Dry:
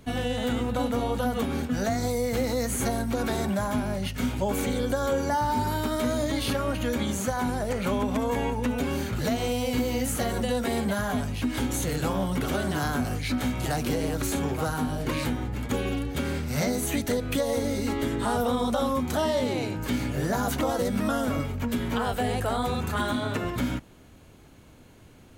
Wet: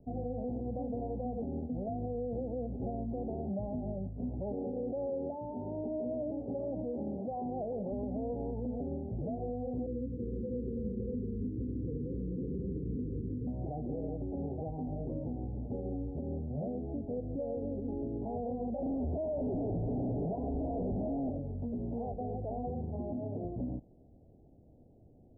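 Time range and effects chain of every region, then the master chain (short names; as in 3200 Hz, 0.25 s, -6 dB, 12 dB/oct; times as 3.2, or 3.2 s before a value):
4.53–7.92 HPF 330 Hz 6 dB/oct + fast leveller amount 70%
9.86–13.47 Chebyshev low-pass 510 Hz, order 10 + tapped delay 0.251/0.318/0.557 s -10.5/-7/-5.5 dB
18.82–21.3 ripple EQ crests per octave 1.6, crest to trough 17 dB + Schmitt trigger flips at -30 dBFS
whole clip: steep low-pass 770 Hz 72 dB/oct; limiter -22 dBFS; gain -7 dB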